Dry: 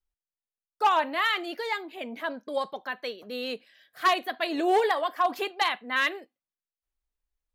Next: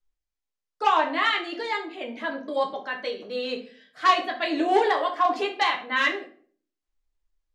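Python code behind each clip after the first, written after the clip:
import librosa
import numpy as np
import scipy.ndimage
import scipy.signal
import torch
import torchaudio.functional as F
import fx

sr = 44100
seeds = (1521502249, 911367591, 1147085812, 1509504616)

y = scipy.signal.sosfilt(scipy.signal.butter(4, 7900.0, 'lowpass', fs=sr, output='sos'), x)
y = fx.room_shoebox(y, sr, seeds[0], volume_m3=40.0, walls='mixed', distance_m=0.51)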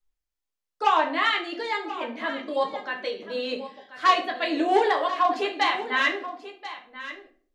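y = x + 10.0 ** (-14.0 / 20.0) * np.pad(x, (int(1035 * sr / 1000.0), 0))[:len(x)]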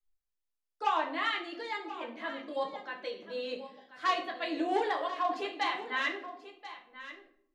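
y = fx.room_shoebox(x, sr, seeds[1], volume_m3=2100.0, walls='furnished', distance_m=0.76)
y = y * librosa.db_to_amplitude(-9.0)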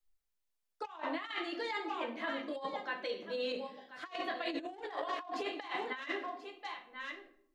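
y = fx.over_compress(x, sr, threshold_db=-36.0, ratio=-0.5)
y = y * librosa.db_to_amplitude(-1.5)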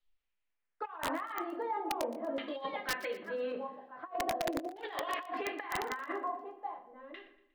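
y = fx.filter_lfo_lowpass(x, sr, shape='saw_down', hz=0.42, low_hz=530.0, high_hz=3400.0, q=2.2)
y = (np.mod(10.0 ** (25.0 / 20.0) * y + 1.0, 2.0) - 1.0) / 10.0 ** (25.0 / 20.0)
y = fx.echo_thinned(y, sr, ms=119, feedback_pct=46, hz=420.0, wet_db=-17.5)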